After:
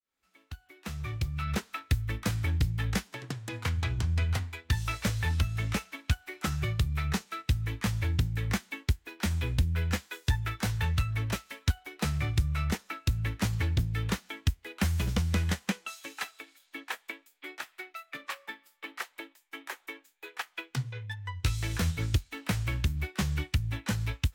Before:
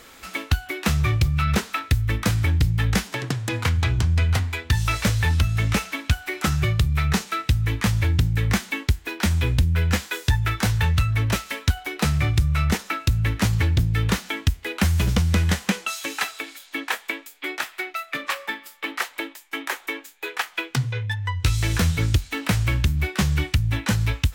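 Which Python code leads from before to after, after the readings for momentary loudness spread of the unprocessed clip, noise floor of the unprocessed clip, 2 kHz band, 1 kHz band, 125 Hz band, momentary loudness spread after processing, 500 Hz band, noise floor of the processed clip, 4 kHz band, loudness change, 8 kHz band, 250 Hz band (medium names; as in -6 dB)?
8 LU, -48 dBFS, -10.0 dB, -10.0 dB, -9.0 dB, 12 LU, -9.5 dB, -69 dBFS, -9.5 dB, -8.5 dB, -9.5 dB, -9.0 dB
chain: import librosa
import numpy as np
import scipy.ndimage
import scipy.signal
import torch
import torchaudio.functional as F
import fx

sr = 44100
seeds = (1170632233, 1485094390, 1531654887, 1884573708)

y = fx.fade_in_head(x, sr, length_s=1.7)
y = fx.upward_expand(y, sr, threshold_db=-39.0, expansion=1.5)
y = y * librosa.db_to_amplitude(-6.0)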